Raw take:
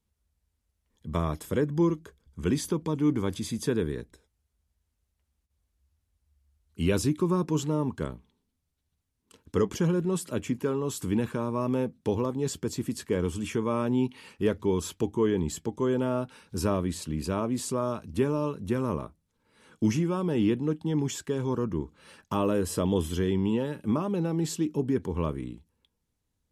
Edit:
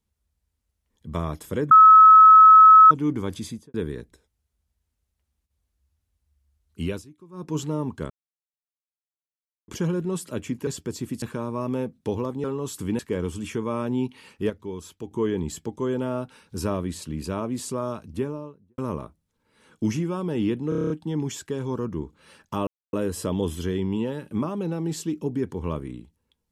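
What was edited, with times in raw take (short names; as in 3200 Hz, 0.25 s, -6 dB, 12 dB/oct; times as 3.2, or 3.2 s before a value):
1.71–2.91 bleep 1290 Hz -7 dBFS
3.43–3.74 studio fade out
6.8–7.57 dip -23 dB, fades 0.25 s
8.1–9.68 mute
10.67–11.22 swap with 12.44–12.99
14.5–15.11 gain -8 dB
17.97–18.78 studio fade out
20.69 stutter 0.03 s, 8 plays
22.46 insert silence 0.26 s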